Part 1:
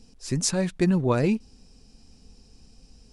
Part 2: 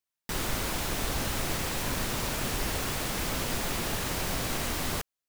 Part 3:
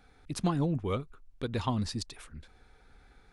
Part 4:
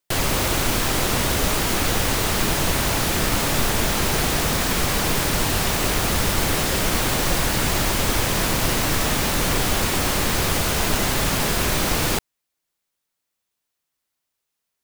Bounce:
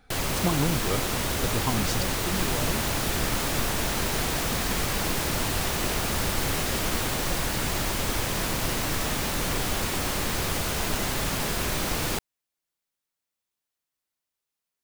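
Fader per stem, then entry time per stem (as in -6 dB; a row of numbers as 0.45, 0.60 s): -12.5, -4.0, +2.0, -6.5 dB; 1.45, 2.05, 0.00, 0.00 s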